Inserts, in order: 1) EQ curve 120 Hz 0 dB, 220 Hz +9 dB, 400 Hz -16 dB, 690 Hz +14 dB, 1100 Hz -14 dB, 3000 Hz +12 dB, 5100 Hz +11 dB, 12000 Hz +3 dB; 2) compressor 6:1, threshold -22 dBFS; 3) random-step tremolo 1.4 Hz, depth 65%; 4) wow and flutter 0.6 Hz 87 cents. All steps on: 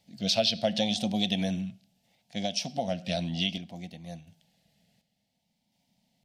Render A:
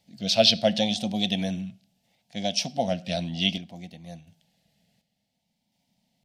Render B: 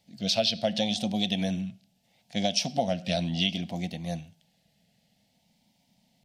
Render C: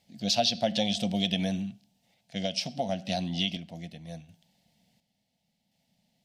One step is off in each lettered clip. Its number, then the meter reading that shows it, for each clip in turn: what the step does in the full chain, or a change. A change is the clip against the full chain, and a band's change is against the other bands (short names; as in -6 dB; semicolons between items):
2, mean gain reduction 2.0 dB; 3, momentary loudness spread change -7 LU; 4, 1 kHz band +2.5 dB